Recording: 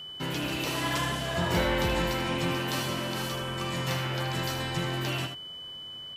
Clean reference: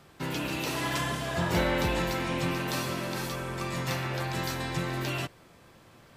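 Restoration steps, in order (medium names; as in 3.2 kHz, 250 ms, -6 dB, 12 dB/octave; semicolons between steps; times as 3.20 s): clip repair -18 dBFS; band-stop 3 kHz, Q 30; inverse comb 78 ms -8.5 dB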